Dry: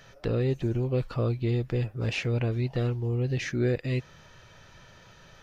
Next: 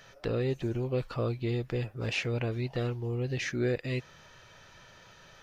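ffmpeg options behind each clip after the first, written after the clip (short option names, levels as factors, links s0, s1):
-af "lowshelf=f=290:g=-6.5"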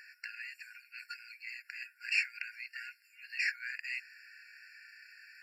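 -filter_complex "[0:a]asplit=2[s0][s1];[s1]aeval=exprs='0.141*sin(PI/2*1.58*val(0)/0.141)':c=same,volume=0.631[s2];[s0][s2]amix=inputs=2:normalize=0,afftfilt=real='re*eq(mod(floor(b*sr/1024/1400),2),1)':imag='im*eq(mod(floor(b*sr/1024/1400),2),1)':win_size=1024:overlap=0.75,volume=0.631"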